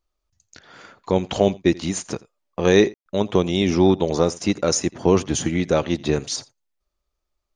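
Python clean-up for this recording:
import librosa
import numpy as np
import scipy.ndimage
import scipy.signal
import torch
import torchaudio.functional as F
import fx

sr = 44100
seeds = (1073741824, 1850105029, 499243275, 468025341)

y = fx.fix_ambience(x, sr, seeds[0], print_start_s=6.8, print_end_s=7.3, start_s=2.94, end_s=3.06)
y = fx.fix_echo_inverse(y, sr, delay_ms=85, level_db=-22.5)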